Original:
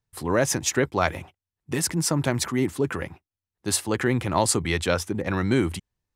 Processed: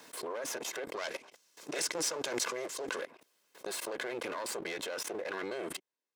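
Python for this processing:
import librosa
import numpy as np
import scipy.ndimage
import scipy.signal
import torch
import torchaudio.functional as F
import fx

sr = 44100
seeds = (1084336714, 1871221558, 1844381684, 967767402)

y = fx.lower_of_two(x, sr, delay_ms=1.9)
y = scipy.signal.sosfilt(scipy.signal.butter(4, 270.0, 'highpass', fs=sr, output='sos'), y)
y = fx.high_shelf(y, sr, hz=11000.0, db=-7.0)
y = fx.level_steps(y, sr, step_db=19)
y = fx.peak_eq(y, sr, hz=5900.0, db=9.0, octaves=1.2, at=(0.97, 3.0))
y = fx.pre_swell(y, sr, db_per_s=51.0)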